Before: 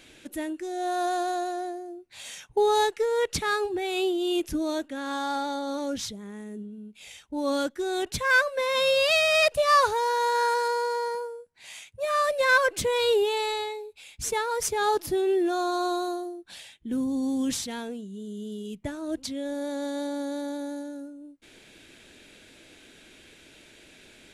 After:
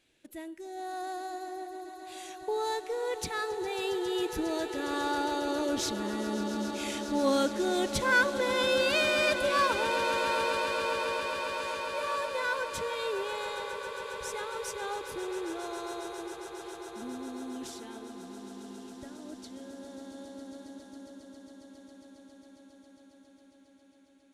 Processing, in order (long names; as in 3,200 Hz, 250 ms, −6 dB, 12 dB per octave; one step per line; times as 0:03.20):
source passing by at 0:06.70, 12 m/s, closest 12 metres
in parallel at +1 dB: downward compressor, threshold −41 dBFS, peak gain reduction 17.5 dB
on the sum: noise gate −57 dBFS, range −8 dB
echo that builds up and dies away 136 ms, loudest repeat 8, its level −14.5 dB